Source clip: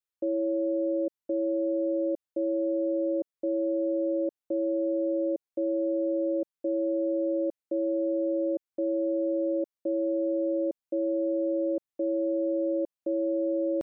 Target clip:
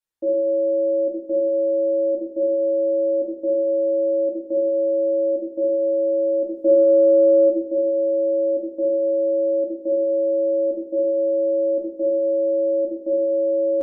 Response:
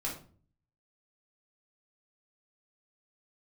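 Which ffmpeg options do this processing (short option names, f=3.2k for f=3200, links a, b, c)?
-filter_complex "[0:a]asplit=3[a][b][c];[a]afade=t=out:st=6.51:d=0.02[d];[b]acontrast=57,afade=t=in:st=6.51:d=0.02,afade=t=out:st=7.48:d=0.02[e];[c]afade=t=in:st=7.48:d=0.02[f];[d][e][f]amix=inputs=3:normalize=0[g];[1:a]atrim=start_sample=2205,asetrate=31311,aresample=44100[h];[g][h]afir=irnorm=-1:irlink=0"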